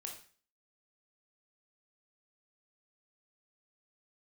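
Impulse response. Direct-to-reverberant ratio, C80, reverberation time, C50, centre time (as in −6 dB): 1.0 dB, 11.5 dB, 0.40 s, 6.5 dB, 23 ms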